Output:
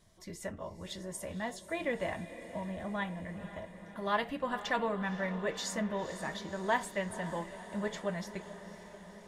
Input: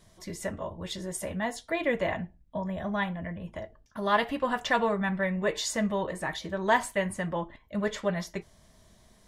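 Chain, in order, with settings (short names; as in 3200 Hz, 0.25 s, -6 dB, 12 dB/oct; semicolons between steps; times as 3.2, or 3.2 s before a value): diffused feedback echo 0.51 s, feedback 67%, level -13 dB; gain -6.5 dB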